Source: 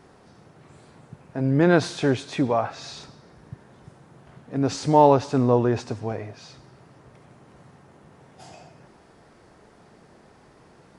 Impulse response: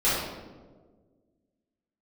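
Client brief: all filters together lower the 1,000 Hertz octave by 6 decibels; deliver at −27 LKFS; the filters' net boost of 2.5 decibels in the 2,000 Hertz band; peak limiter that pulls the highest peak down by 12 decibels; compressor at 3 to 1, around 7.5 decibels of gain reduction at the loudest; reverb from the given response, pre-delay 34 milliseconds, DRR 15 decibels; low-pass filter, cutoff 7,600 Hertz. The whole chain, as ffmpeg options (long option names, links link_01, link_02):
-filter_complex "[0:a]lowpass=7600,equalizer=frequency=1000:width_type=o:gain=-9,equalizer=frequency=2000:width_type=o:gain=7.5,acompressor=threshold=-23dB:ratio=3,alimiter=level_in=2dB:limit=-24dB:level=0:latency=1,volume=-2dB,asplit=2[link_01][link_02];[1:a]atrim=start_sample=2205,adelay=34[link_03];[link_02][link_03]afir=irnorm=-1:irlink=0,volume=-30dB[link_04];[link_01][link_04]amix=inputs=2:normalize=0,volume=10.5dB"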